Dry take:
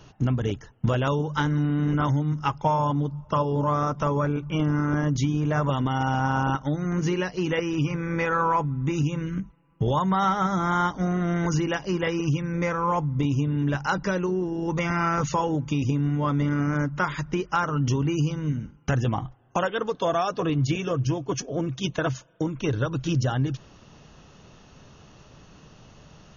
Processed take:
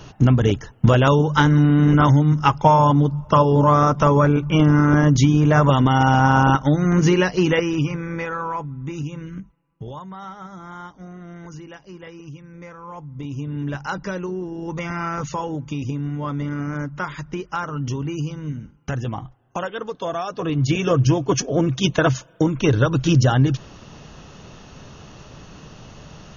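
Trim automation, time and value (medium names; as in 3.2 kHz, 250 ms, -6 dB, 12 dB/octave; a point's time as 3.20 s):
7.39 s +9 dB
8.40 s -4 dB
9.39 s -4 dB
10.11 s -13.5 dB
12.85 s -13.5 dB
13.57 s -2 dB
20.28 s -2 dB
20.90 s +8.5 dB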